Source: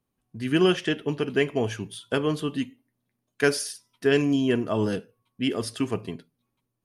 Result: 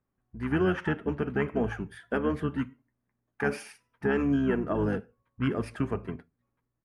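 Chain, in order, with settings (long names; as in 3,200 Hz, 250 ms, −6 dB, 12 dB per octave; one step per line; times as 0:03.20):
pitch-shifted copies added −12 semitones −5 dB
high shelf with overshoot 2,600 Hz −13 dB, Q 1.5
brickwall limiter −14 dBFS, peak gain reduction 9 dB
level −3 dB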